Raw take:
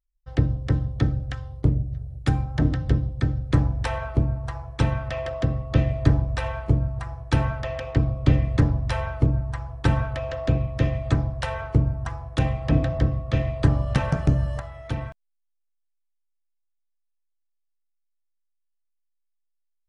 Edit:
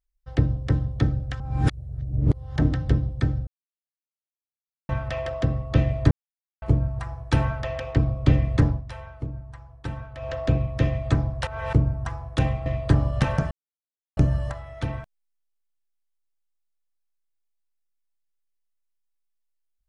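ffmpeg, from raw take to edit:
-filter_complex "[0:a]asplit=13[a][b][c][d][e][f][g][h][i][j][k][l][m];[a]atrim=end=1.402[n];[b]atrim=start=1.398:end=2.562,asetpts=PTS-STARTPTS,areverse[o];[c]atrim=start=2.558:end=3.47,asetpts=PTS-STARTPTS,afade=t=out:st=0.908:d=0.004:c=hsin[p];[d]atrim=start=3.47:end=4.89,asetpts=PTS-STARTPTS,volume=0[q];[e]atrim=start=4.89:end=6.11,asetpts=PTS-STARTPTS,afade=t=in:d=0.004:c=hsin,afade=t=out:st=1.216:d=0.004:c=hsin[r];[f]atrim=start=6.11:end=6.62,asetpts=PTS-STARTPTS,volume=0[s];[g]atrim=start=6.62:end=8.84,asetpts=PTS-STARTPTS,afade=t=in:d=0.004:c=hsin,afade=t=out:st=2.06:d=0.16:silence=0.251189[t];[h]atrim=start=8.84:end=10.15,asetpts=PTS-STARTPTS,volume=-12dB[u];[i]atrim=start=10.15:end=11.472,asetpts=PTS-STARTPTS,afade=t=in:d=0.16:silence=0.251189[v];[j]atrim=start=11.468:end=11.732,asetpts=PTS-STARTPTS,areverse[w];[k]atrim=start=11.728:end=12.662[x];[l]atrim=start=13.398:end=14.25,asetpts=PTS-STARTPTS,afade=t=out:st=0.848:d=0.004:c=hsin,apad=pad_dur=0.66[y];[m]atrim=start=14.25,asetpts=PTS-STARTPTS,afade=t=in:d=0.004:c=hsin[z];[n][o]acrossfade=d=0.004:c1=hsin:c2=hsin[aa];[p][q][r][s][t][u][v]concat=n=7:v=0:a=1[ab];[aa][ab]acrossfade=d=0.004:c1=hsin:c2=hsin[ac];[ac][w]acrossfade=d=0.004:c1=hsin:c2=hsin[ad];[ad][x]acrossfade=d=0.004:c1=hsin:c2=hsin[ae];[y][z]concat=n=2:v=0:a=1[af];[ae][af]acrossfade=d=0.004:c1=hsin:c2=hsin"

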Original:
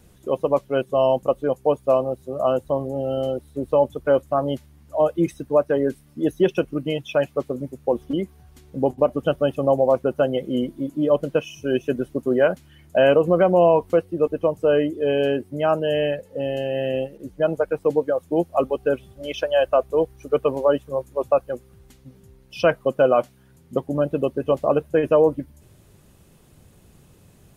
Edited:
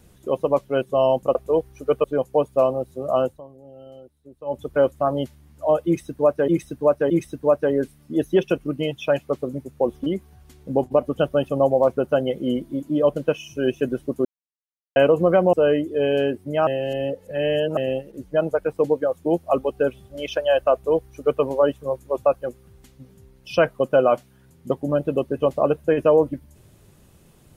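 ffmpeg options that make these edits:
-filter_complex "[0:a]asplit=12[a][b][c][d][e][f][g][h][i][j][k][l];[a]atrim=end=1.352[m];[b]atrim=start=19.788:end=20.482[n];[c]atrim=start=1.348:end=2.72,asetpts=PTS-STARTPTS,afade=t=out:st=1.202:d=0.17:silence=0.112202[o];[d]atrim=start=2.72:end=3.76,asetpts=PTS-STARTPTS,volume=-19dB[p];[e]atrim=start=3.76:end=5.792,asetpts=PTS-STARTPTS,afade=t=in:d=0.17:silence=0.112202[q];[f]atrim=start=5.168:end=5.792[r];[g]atrim=start=5.168:end=12.32,asetpts=PTS-STARTPTS,afade=t=out:st=7.148:d=0.004:c=hsin[s];[h]atrim=start=12.32:end=13.03,asetpts=PTS-STARTPTS,volume=0[t];[i]atrim=start=13.03:end=13.602,asetpts=PTS-STARTPTS,afade=t=in:d=0.004:c=hsin[u];[j]atrim=start=14.588:end=15.732[v];[k]atrim=start=15.728:end=16.832,asetpts=PTS-STARTPTS,areverse[w];[l]atrim=start=16.828[x];[m][n]acrossfade=d=0.004:c1=hsin:c2=hsin[y];[o][p][q]concat=n=3:v=0:a=1[z];[y][z]acrossfade=d=0.004:c1=hsin:c2=hsin[aa];[aa][r]acrossfade=d=0.004:c1=hsin:c2=hsin[ab];[s][t][u]concat=n=3:v=0:a=1[ac];[ab][ac]acrossfade=d=0.004:c1=hsin:c2=hsin[ad];[ad][v]acrossfade=d=0.004:c1=hsin:c2=hsin[ae];[ae][w]acrossfade=d=0.004:c1=hsin:c2=hsin[af];[af][x]acrossfade=d=0.004:c1=hsin:c2=hsin"

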